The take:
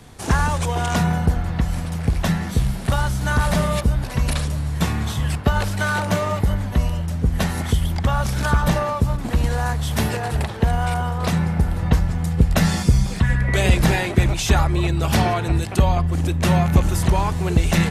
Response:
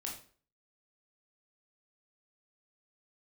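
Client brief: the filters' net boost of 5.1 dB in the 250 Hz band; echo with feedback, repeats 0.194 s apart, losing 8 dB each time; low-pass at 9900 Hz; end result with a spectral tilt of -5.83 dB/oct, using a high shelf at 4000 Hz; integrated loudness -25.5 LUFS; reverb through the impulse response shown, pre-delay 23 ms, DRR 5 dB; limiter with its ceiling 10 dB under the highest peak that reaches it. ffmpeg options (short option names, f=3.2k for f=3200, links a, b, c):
-filter_complex "[0:a]lowpass=9.9k,equalizer=f=250:t=o:g=8,highshelf=f=4k:g=5.5,alimiter=limit=-9dB:level=0:latency=1,aecho=1:1:194|388|582|776|970:0.398|0.159|0.0637|0.0255|0.0102,asplit=2[a][b];[1:a]atrim=start_sample=2205,adelay=23[c];[b][c]afir=irnorm=-1:irlink=0,volume=-4.5dB[d];[a][d]amix=inputs=2:normalize=0,volume=-8dB"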